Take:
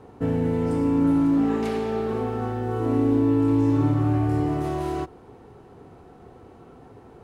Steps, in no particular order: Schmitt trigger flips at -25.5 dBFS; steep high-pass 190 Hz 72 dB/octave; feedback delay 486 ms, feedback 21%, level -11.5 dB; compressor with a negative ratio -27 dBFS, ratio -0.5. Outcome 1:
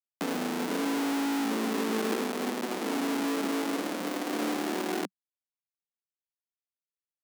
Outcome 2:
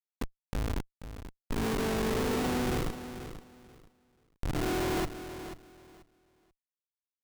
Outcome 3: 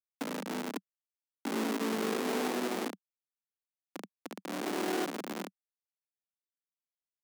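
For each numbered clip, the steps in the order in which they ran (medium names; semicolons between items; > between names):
feedback delay > Schmitt trigger > compressor with a negative ratio > steep high-pass; compressor with a negative ratio > steep high-pass > Schmitt trigger > feedback delay; feedback delay > compressor with a negative ratio > Schmitt trigger > steep high-pass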